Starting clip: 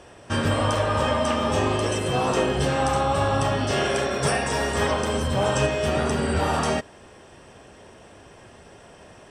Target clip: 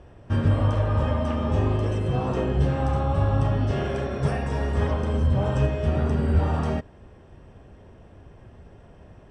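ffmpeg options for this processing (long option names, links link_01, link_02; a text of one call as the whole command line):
ffmpeg -i in.wav -af "aemphasis=mode=reproduction:type=riaa,volume=-7.5dB" out.wav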